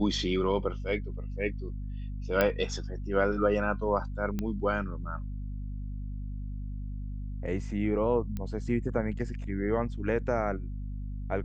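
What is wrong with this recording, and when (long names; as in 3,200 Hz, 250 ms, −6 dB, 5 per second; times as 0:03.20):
mains hum 50 Hz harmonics 5 −36 dBFS
0:02.41: click −12 dBFS
0:04.39: click −19 dBFS
0:08.37: click −23 dBFS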